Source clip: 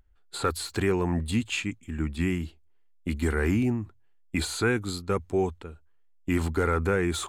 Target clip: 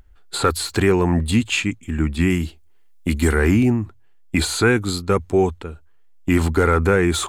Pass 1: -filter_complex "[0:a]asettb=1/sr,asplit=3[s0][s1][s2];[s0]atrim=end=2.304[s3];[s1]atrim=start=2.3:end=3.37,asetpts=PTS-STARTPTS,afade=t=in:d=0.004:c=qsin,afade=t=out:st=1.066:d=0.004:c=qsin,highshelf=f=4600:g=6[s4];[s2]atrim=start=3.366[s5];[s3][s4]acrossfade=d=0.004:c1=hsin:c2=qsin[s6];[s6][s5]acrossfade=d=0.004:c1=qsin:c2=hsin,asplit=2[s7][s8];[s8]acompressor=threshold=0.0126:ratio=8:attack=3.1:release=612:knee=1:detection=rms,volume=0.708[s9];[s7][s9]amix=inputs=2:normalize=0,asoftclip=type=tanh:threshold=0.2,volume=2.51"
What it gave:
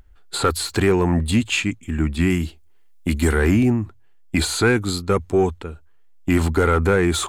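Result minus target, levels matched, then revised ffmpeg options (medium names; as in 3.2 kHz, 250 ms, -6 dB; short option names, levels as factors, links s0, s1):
saturation: distortion +17 dB
-filter_complex "[0:a]asettb=1/sr,asplit=3[s0][s1][s2];[s0]atrim=end=2.304[s3];[s1]atrim=start=2.3:end=3.37,asetpts=PTS-STARTPTS,afade=t=in:d=0.004:c=qsin,afade=t=out:st=1.066:d=0.004:c=qsin,highshelf=f=4600:g=6[s4];[s2]atrim=start=3.366[s5];[s3][s4]acrossfade=d=0.004:c1=hsin:c2=qsin[s6];[s6][s5]acrossfade=d=0.004:c1=qsin:c2=hsin,asplit=2[s7][s8];[s8]acompressor=threshold=0.0126:ratio=8:attack=3.1:release=612:knee=1:detection=rms,volume=0.708[s9];[s7][s9]amix=inputs=2:normalize=0,asoftclip=type=tanh:threshold=0.596,volume=2.51"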